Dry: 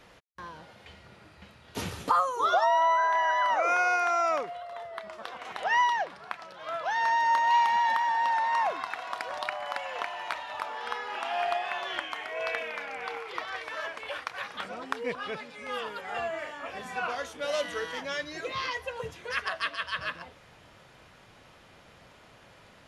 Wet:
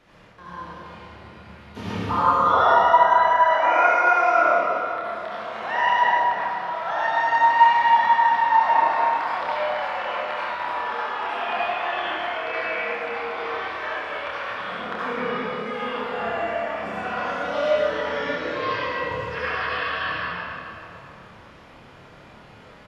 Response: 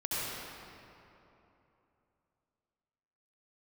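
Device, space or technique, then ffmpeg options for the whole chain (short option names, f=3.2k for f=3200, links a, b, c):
swimming-pool hall: -filter_complex "[1:a]atrim=start_sample=2205[a];[0:a][a]afir=irnorm=-1:irlink=0,highshelf=f=5.2k:g=-7.5,acrossover=split=4700[b][c];[c]acompressor=threshold=-60dB:ratio=4:attack=1:release=60[d];[b][d]amix=inputs=2:normalize=0,equalizer=f=220:t=o:w=0.35:g=4.5,asplit=2[e][f];[f]adelay=28,volume=-5dB[g];[e][g]amix=inputs=2:normalize=0"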